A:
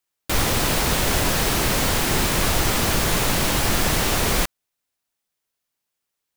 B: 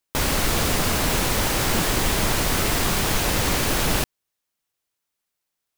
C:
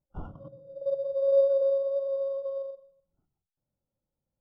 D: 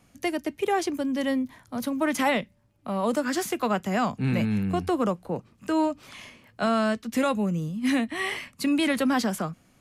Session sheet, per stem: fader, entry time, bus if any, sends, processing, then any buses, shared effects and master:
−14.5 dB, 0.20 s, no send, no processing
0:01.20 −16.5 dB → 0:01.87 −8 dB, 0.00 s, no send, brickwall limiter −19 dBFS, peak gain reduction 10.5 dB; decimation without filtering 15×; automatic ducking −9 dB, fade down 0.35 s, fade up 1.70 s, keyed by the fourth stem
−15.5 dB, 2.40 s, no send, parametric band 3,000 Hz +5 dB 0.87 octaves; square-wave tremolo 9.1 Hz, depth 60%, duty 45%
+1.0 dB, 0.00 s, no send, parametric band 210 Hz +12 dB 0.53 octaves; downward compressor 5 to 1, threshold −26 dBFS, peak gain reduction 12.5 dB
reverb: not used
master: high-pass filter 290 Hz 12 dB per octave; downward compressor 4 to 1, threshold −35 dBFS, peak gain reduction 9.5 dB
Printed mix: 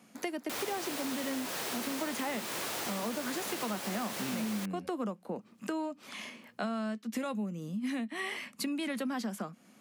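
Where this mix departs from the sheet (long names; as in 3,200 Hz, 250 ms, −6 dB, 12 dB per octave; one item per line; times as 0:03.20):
stem A −14.5 dB → −5.5 dB
stem D: missing downward compressor 5 to 1, threshold −26 dBFS, peak gain reduction 12.5 dB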